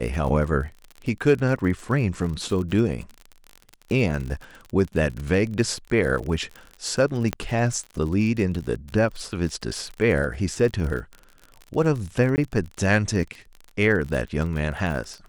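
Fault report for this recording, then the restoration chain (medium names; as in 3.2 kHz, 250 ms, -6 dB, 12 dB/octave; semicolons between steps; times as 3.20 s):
crackle 42 per s -30 dBFS
7.33 s: pop -11 dBFS
12.36–12.38 s: dropout 19 ms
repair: de-click; interpolate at 12.36 s, 19 ms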